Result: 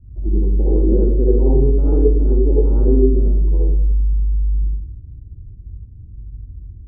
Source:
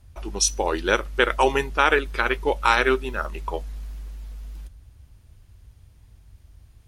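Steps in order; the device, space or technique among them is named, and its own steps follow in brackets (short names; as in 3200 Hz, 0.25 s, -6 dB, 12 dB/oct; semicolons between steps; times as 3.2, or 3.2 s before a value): next room (LPF 310 Hz 24 dB/oct; reverb RT60 0.70 s, pre-delay 54 ms, DRR -6 dB); gain +8.5 dB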